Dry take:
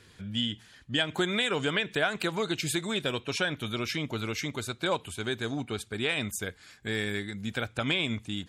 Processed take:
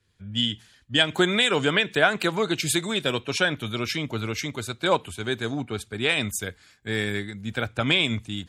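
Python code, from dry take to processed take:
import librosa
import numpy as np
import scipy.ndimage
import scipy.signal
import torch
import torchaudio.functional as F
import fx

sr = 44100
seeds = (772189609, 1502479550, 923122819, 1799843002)

y = fx.band_widen(x, sr, depth_pct=70)
y = y * 10.0 ** (5.5 / 20.0)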